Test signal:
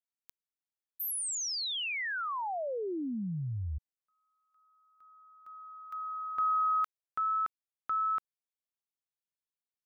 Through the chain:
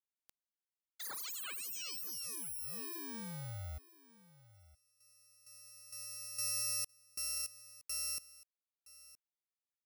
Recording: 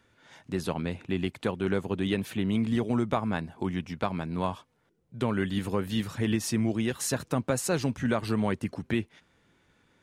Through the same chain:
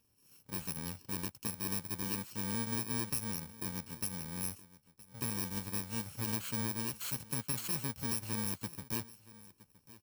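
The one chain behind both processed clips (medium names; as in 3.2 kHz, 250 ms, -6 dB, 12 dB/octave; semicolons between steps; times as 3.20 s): bit-reversed sample order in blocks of 64 samples; dynamic bell 450 Hz, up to -5 dB, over -43 dBFS, Q 0.84; delay 968 ms -19.5 dB; trim -8.5 dB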